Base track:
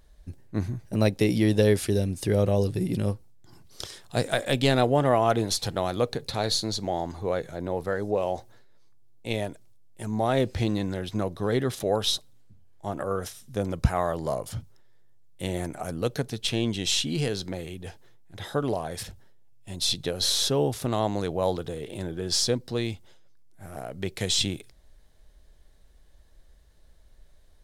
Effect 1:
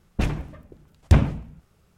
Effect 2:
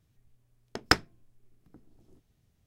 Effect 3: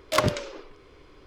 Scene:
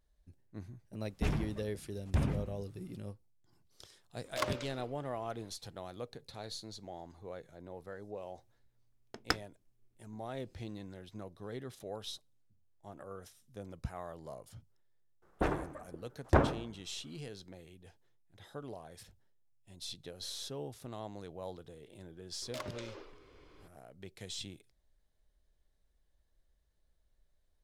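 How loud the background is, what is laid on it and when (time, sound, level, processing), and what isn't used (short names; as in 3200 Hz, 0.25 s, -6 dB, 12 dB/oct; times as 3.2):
base track -18 dB
1.03 add 1 -5.5 dB + limiter -16.5 dBFS
4.24 add 3 -12 dB
8.39 add 2 -10 dB
15.22 add 1 -14 dB + band shelf 730 Hz +15 dB 2.9 oct
22.42 add 3 -7 dB + compressor 2.5:1, threshold -37 dBFS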